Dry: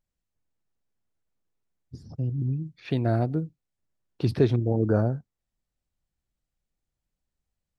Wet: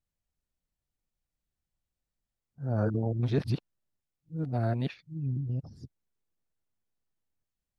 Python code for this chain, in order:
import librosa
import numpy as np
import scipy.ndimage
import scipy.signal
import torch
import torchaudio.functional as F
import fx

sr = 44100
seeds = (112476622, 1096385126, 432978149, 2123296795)

y = x[::-1].copy()
y = fx.dynamic_eq(y, sr, hz=380.0, q=1.9, threshold_db=-39.0, ratio=4.0, max_db=-6)
y = y * librosa.db_to_amplitude(-4.0)